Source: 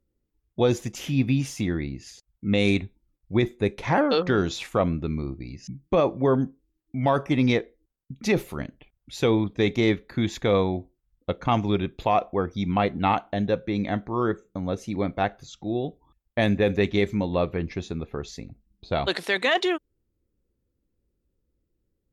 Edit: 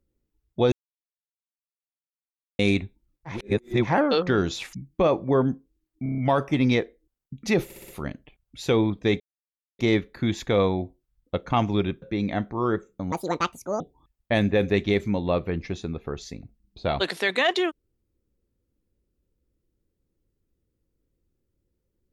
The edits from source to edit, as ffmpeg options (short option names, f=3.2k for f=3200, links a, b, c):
-filter_complex "[0:a]asplit=19[a][b][c][d][e][f][g][h][i][j][k][l][m][n][o][p][q][r][s];[a]atrim=end=0.72,asetpts=PTS-STARTPTS,afade=t=out:st=0.716:d=0.004:c=hsin[t];[b]atrim=start=0.72:end=2.59,asetpts=PTS-STARTPTS,volume=0[u];[c]atrim=start=2.59:end=3.41,asetpts=PTS-STARTPTS,afade=t=in:d=0.004:c=hsin[v];[d]atrim=start=3.25:end=3.94,asetpts=PTS-STARTPTS,areverse[w];[e]atrim=start=3.78:end=4.732[x];[f]atrim=start=5.658:end=6.992[y];[g]atrim=start=6.958:end=6.992[z];[h]atrim=start=6.958:end=6.992[aa];[i]atrim=start=6.958:end=6.992[ab];[j]atrim=start=6.958:end=6.992[ac];[k]atrim=start=6.958:end=8.482[ad];[l]atrim=start=8.418:end=8.482[ae];[m]atrim=start=8.418:end=8.482[af];[n]atrim=start=8.418:end=8.482[ag];[o]atrim=start=8.418:end=9.74,asetpts=PTS-STARTPTS,afade=t=out:st=1.318:d=0.004:c=hsin,apad=pad_dur=0.59[ah];[p]atrim=start=9.74:end=11.972,asetpts=PTS-STARTPTS,afade=t=in:d=0.004:c=hsin[ai];[q]atrim=start=13.578:end=14.684[aj];[r]atrim=start=14.68:end=15.87,asetpts=PTS-STARTPTS,asetrate=76734,aresample=44100,atrim=end_sample=30160,asetpts=PTS-STARTPTS[ak];[s]atrim=start=15.866[al];[t][u][v]concat=n=3:v=0:a=1[am];[am][w]acrossfade=d=0.16:c1=tri:c2=tri[an];[an][x]acrossfade=d=0.16:c1=tri:c2=tri[ao];[ao][y]acrossfade=d=0.004:c1=hsin:c2=hsin[ap];[ap][z]acrossfade=d=0.004:c1=hsin:c2=hsin[aq];[aq][aa]acrossfade=d=0.004:c1=hsin:c2=hsin[ar];[ar][ab]acrossfade=d=0.004:c1=hsin:c2=hsin[as];[as][ac]acrossfade=d=0.004:c1=hsin:c2=hsin[at];[at][ad]acrossfade=d=0.004:c1=hsin:c2=hsin[au];[au][ae]acrossfade=d=0.004:c1=hsin:c2=hsin[av];[av][af]acrossfade=d=0.004:c1=hsin:c2=hsin[aw];[aw][ag]acrossfade=d=0.004:c1=hsin:c2=hsin[ax];[ah][ai]concat=n=2:v=0:a=1[ay];[ax][ay]acrossfade=d=0.004:c1=hsin:c2=hsin[az];[az][aj]acrossfade=d=0.004:c1=hsin:c2=hsin[ba];[ba][ak]acrossfade=d=0.004:c1=hsin:c2=hsin[bb];[bb][al]acrossfade=d=0.004:c1=hsin:c2=hsin"